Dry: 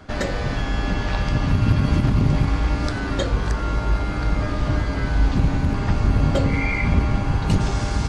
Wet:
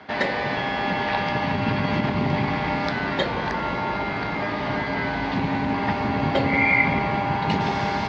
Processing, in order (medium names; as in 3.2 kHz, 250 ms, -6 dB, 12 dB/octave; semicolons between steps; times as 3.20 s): cabinet simulation 240–4400 Hz, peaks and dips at 310 Hz -6 dB, 520 Hz -4 dB, 880 Hz +6 dB, 1.3 kHz -5 dB, 2 kHz +6 dB; filtered feedback delay 175 ms, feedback 84%, low-pass 930 Hz, level -9 dB; trim +3 dB